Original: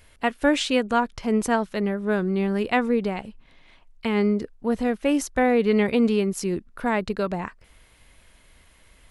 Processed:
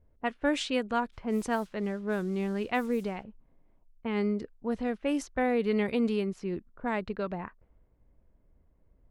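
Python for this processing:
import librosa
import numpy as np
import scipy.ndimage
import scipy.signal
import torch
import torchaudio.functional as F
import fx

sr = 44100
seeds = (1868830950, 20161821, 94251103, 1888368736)

y = fx.dmg_noise_colour(x, sr, seeds[0], colour='blue', level_db=-47.0, at=(1.12, 3.23), fade=0.02)
y = fx.env_lowpass(y, sr, base_hz=460.0, full_db=-17.0)
y = y * librosa.db_to_amplitude(-7.5)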